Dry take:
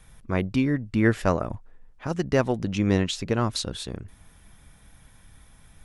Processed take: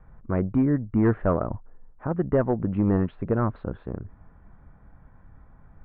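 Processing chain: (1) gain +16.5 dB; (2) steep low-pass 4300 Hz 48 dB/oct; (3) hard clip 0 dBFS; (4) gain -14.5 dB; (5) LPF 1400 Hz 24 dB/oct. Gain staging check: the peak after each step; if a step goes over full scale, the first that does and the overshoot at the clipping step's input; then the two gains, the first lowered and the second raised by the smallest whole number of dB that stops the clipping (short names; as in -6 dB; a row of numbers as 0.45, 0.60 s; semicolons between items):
+9.5, +9.0, 0.0, -14.5, -13.0 dBFS; step 1, 9.0 dB; step 1 +7.5 dB, step 4 -5.5 dB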